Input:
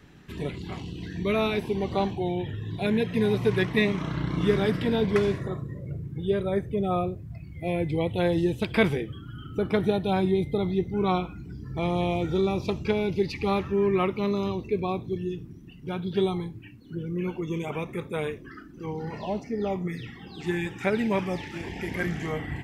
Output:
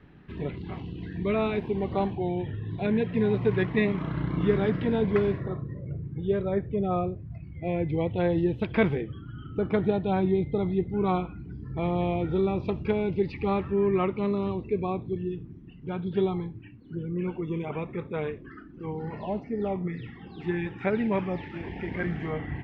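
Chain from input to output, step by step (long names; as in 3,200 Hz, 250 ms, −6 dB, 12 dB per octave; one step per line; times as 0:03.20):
high-frequency loss of the air 370 metres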